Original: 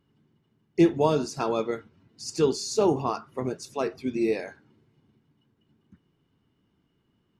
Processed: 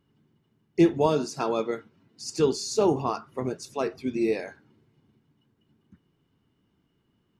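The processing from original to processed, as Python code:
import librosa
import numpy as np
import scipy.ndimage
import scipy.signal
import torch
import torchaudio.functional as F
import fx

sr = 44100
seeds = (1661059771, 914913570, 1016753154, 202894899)

y = fx.highpass(x, sr, hz=130.0, slope=12, at=(1.06, 2.4))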